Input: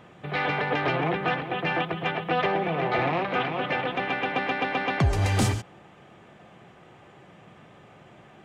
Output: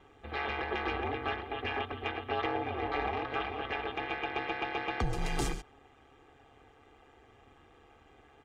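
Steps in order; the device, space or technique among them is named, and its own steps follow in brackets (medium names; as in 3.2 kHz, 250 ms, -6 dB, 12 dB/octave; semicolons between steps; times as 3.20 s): ring-modulated robot voice (ring modulator 71 Hz; comb 2.5 ms, depth 65%); trim -7 dB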